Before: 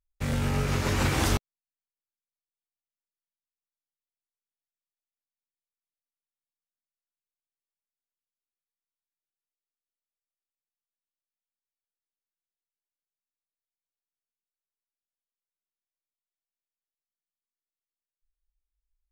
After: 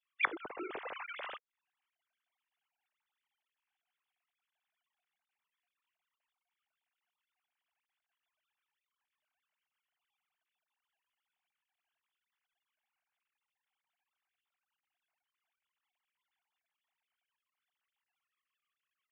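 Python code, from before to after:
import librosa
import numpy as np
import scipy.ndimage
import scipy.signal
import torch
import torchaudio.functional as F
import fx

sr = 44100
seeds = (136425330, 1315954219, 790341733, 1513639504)

y = fx.sine_speech(x, sr)
y = fx.gate_flip(y, sr, shuts_db=-24.0, range_db=-26)
y = y * 10.0 ** (7.5 / 20.0)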